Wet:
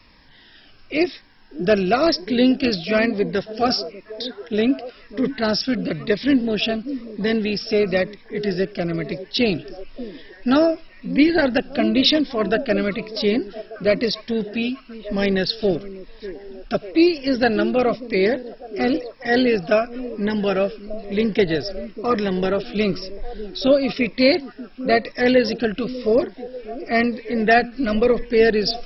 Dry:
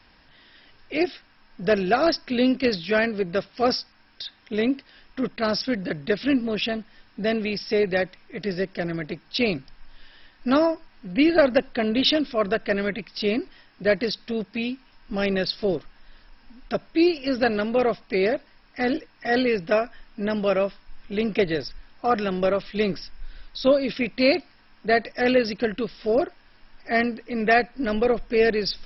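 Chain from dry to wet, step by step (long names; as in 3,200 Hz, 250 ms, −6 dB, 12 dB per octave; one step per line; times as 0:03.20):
echo through a band-pass that steps 594 ms, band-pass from 310 Hz, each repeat 0.7 octaves, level −11 dB
phaser whose notches keep moving one way falling 1 Hz
level +5 dB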